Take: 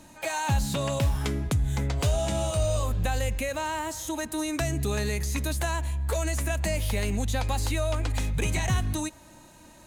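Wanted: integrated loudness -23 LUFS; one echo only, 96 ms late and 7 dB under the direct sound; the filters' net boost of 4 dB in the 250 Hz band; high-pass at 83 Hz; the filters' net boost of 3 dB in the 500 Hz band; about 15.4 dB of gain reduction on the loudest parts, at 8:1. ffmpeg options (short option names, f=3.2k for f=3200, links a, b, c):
-af "highpass=83,equalizer=f=250:t=o:g=4.5,equalizer=f=500:t=o:g=3,acompressor=threshold=-37dB:ratio=8,aecho=1:1:96:0.447,volume=16.5dB"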